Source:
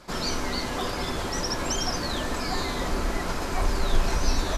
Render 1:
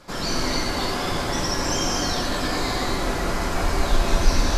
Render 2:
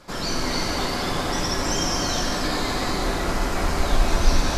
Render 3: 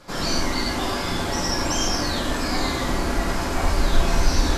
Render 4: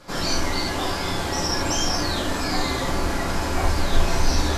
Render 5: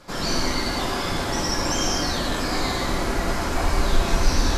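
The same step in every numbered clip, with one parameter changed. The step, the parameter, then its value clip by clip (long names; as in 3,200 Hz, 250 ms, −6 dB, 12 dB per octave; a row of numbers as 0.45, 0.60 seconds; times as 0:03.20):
reverb whose tail is shaped and stops, gate: 340, 520, 150, 100, 230 milliseconds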